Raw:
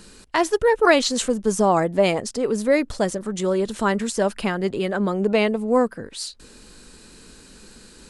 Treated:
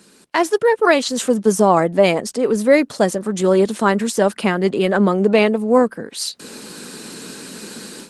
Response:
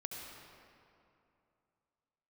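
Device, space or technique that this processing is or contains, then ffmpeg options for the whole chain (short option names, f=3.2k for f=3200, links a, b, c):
video call: -af "highpass=f=150:w=0.5412,highpass=f=150:w=1.3066,dynaudnorm=f=200:g=3:m=15.5dB,volume=-1dB" -ar 48000 -c:a libopus -b:a 20k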